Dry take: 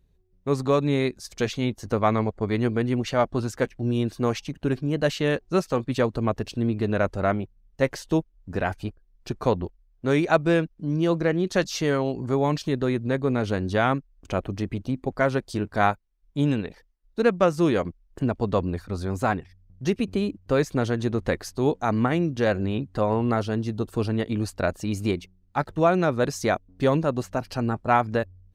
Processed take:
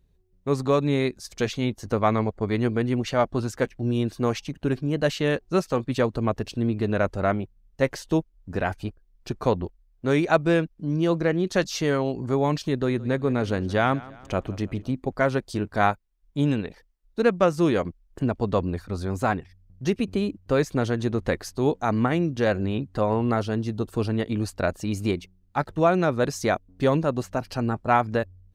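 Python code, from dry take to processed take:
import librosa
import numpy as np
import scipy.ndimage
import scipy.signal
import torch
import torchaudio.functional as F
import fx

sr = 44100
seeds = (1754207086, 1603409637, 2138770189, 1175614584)

y = fx.echo_feedback(x, sr, ms=168, feedback_pct=47, wet_db=-20.0, at=(12.71, 14.92))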